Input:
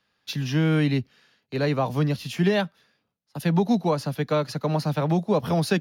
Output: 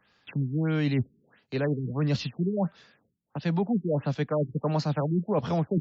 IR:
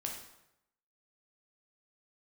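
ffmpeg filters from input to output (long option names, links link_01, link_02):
-af "areverse,acompressor=threshold=-30dB:ratio=6,areverse,afftfilt=real='re*lt(b*sr/1024,390*pow(7900/390,0.5+0.5*sin(2*PI*1.5*pts/sr)))':imag='im*lt(b*sr/1024,390*pow(7900/390,0.5+0.5*sin(2*PI*1.5*pts/sr)))':win_size=1024:overlap=0.75,volume=6.5dB"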